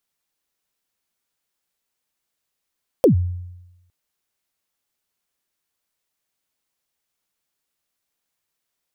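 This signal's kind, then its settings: kick drum length 0.86 s, from 590 Hz, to 89 Hz, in 110 ms, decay 0.99 s, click on, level -7.5 dB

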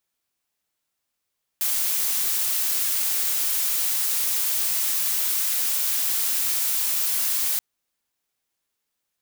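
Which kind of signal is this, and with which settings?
noise blue, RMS -23.5 dBFS 5.98 s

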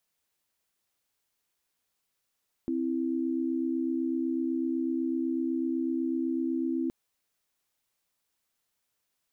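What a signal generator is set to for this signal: chord C4/E4 sine, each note -29.5 dBFS 4.22 s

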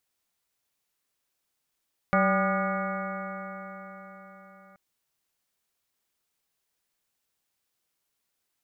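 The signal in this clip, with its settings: stretched partials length 2.63 s, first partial 190 Hz, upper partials -15.5/-0.5/-4.5/-18/-1/-3.5/-15/-12.5/-9 dB, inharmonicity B 0.0035, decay 4.76 s, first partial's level -24 dB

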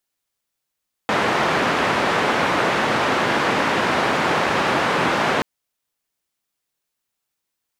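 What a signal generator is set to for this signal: noise band 150–1500 Hz, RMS -19.5 dBFS 4.33 s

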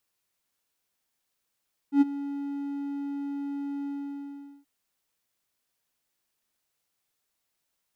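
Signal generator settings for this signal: ADSR triangle 282 Hz, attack 93 ms, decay 23 ms, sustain -16.5 dB, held 1.94 s, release 789 ms -12 dBFS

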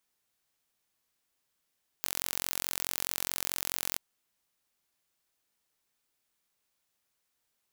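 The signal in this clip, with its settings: pulse train 44.7 per s, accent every 0, -5 dBFS 1.94 s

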